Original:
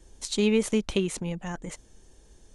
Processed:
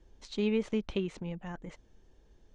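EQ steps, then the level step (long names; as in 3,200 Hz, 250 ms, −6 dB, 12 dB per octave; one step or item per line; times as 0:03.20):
high-frequency loss of the air 180 metres
−6.0 dB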